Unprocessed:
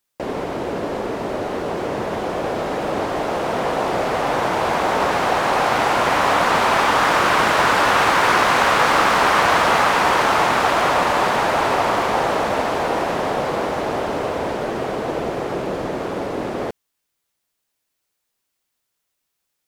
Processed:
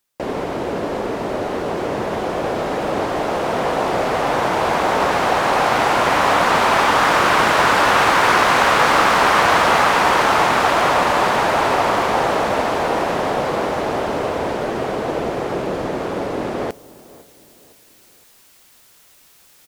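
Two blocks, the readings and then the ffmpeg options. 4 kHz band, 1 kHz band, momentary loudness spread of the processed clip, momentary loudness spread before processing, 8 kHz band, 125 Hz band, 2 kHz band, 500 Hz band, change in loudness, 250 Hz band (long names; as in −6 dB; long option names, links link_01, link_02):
+1.5 dB, +1.5 dB, 10 LU, 10 LU, +1.5 dB, +1.5 dB, +1.5 dB, +1.5 dB, +1.5 dB, +1.5 dB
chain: -filter_complex "[0:a]areverse,acompressor=mode=upward:threshold=-32dB:ratio=2.5,areverse,asplit=2[link_01][link_02];[link_02]adelay=509,lowpass=frequency=1100:poles=1,volume=-20dB,asplit=2[link_03][link_04];[link_04]adelay=509,lowpass=frequency=1100:poles=1,volume=0.44,asplit=2[link_05][link_06];[link_06]adelay=509,lowpass=frequency=1100:poles=1,volume=0.44[link_07];[link_01][link_03][link_05][link_07]amix=inputs=4:normalize=0,volume=1.5dB"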